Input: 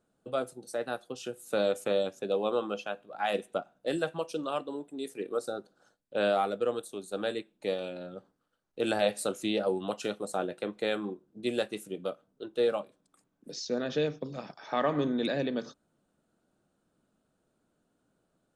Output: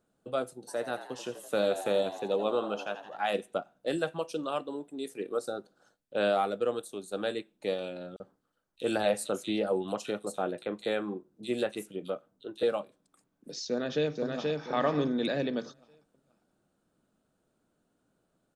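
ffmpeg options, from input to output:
-filter_complex "[0:a]asplit=3[a][b][c];[a]afade=t=out:st=0.67:d=0.02[d];[b]asplit=8[e][f][g][h][i][j][k][l];[f]adelay=84,afreqshift=80,volume=-12dB[m];[g]adelay=168,afreqshift=160,volume=-16.6dB[n];[h]adelay=252,afreqshift=240,volume=-21.2dB[o];[i]adelay=336,afreqshift=320,volume=-25.7dB[p];[j]adelay=420,afreqshift=400,volume=-30.3dB[q];[k]adelay=504,afreqshift=480,volume=-34.9dB[r];[l]adelay=588,afreqshift=560,volume=-39.5dB[s];[e][m][n][o][p][q][r][s]amix=inputs=8:normalize=0,afade=t=in:st=0.67:d=0.02,afade=t=out:st=3.2:d=0.02[t];[c]afade=t=in:st=3.2:d=0.02[u];[d][t][u]amix=inputs=3:normalize=0,asettb=1/sr,asplit=3[v][w][x];[v]atrim=end=8.164[y];[w]atrim=start=8.16:end=12.63,asetpts=PTS-STARTPTS,afade=t=in:d=0.004:c=qsin,afade=t=out:st=4.466:d=0.004:c=qsin,acrossover=split=3100[z][aa];[z]adelay=40[ab];[ab][aa]amix=inputs=2:normalize=0,atrim=end_sample=197127[ac];[x]atrim=start=12.626[ad];[y][ac]acrossfade=d=0.004:c1=hsin:c2=qsin[ae];[ae][ad]acrossfade=d=0.004:c1=qsin:c2=hsin,asplit=2[af][ag];[ag]afade=t=in:st=13.67:d=0.01,afade=t=out:st=14.59:d=0.01,aecho=0:1:480|960|1440|1920:0.749894|0.224968|0.0674905|0.0202471[ah];[af][ah]amix=inputs=2:normalize=0"

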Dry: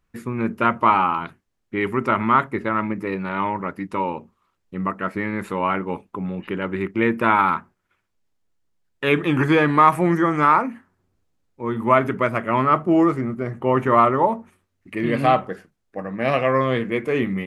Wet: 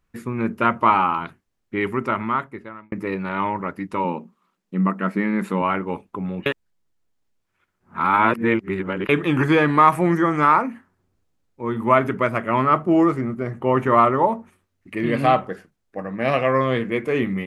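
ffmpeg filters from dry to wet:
-filter_complex "[0:a]asettb=1/sr,asplit=3[a][b][c];[a]atrim=end=4.044[d];[b]atrim=start=4.04:end=5.62,asetpts=PTS-STARTPTS,afade=t=in:d=0.004:c=qsin,afade=t=out:st=1.576:d=0.004:c=qsin,lowshelf=f=130:t=q:w=3:g=-12[e];[c]atrim=start=5.616[f];[d][e]acrossfade=d=0.004:c1=hsin:c2=qsin[g];[g][f]acrossfade=d=0.004:c1=qsin:c2=hsin,asplit=4[h][i][j][k];[h]atrim=end=2.92,asetpts=PTS-STARTPTS,afade=t=out:st=1.79:d=1.13[l];[i]atrim=start=2.92:end=6.462,asetpts=PTS-STARTPTS,afade=t=in:d=0.004:c=hsin[m];[j]atrim=start=6.458:end=9.092,asetpts=PTS-STARTPTS,areverse[n];[k]atrim=start=9.088[o];[l][m]concat=n=2:v=0:a=1[p];[p][n]acrossfade=d=0.004:c1=hsin:c2=hsin[q];[q][o]acrossfade=d=0.004:c1=hsin:c2=hsin"

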